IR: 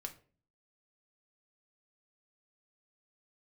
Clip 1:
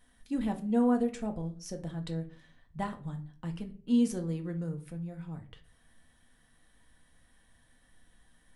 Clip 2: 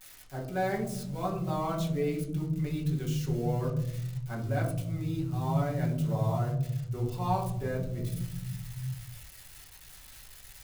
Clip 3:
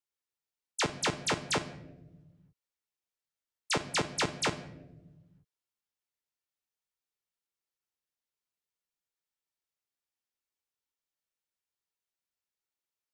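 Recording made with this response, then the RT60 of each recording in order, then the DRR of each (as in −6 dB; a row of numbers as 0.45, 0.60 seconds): 1; 0.40, 0.85, 1.1 seconds; 4.0, −3.5, 10.5 decibels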